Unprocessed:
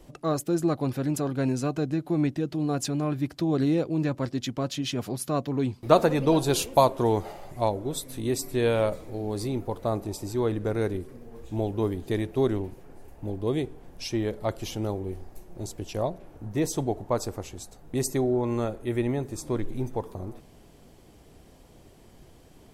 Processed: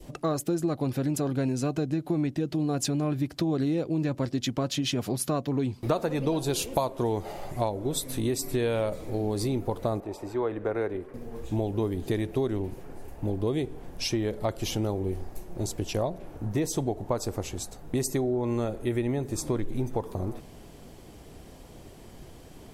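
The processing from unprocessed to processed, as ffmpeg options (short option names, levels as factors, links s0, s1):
-filter_complex "[0:a]asettb=1/sr,asplit=3[s0][s1][s2];[s0]atrim=end=10.004[s3];[s1]atrim=start=10:end=11.14,asetpts=PTS-STARTPTS,afade=t=in:d=0.004:c=qsin,afade=t=out:st=1.136:d=0.004:c=qsin,acrossover=split=380 2500:gain=0.224 1 0.126[s4][s5][s6];[s4][s5][s6]amix=inputs=3:normalize=0[s7];[s2]atrim=start=11.136[s8];[s3][s7]acrossfade=d=0.004:c1=hsin:c2=qsin[s9];[s9][s8]acrossfade=d=0.004:c1=qsin:c2=hsin,adynamicequalizer=threshold=0.00794:dfrequency=1200:dqfactor=1.1:tfrequency=1200:tqfactor=1.1:attack=5:release=100:ratio=0.375:range=2:mode=cutabove:tftype=bell,acompressor=threshold=0.0316:ratio=5,volume=1.88"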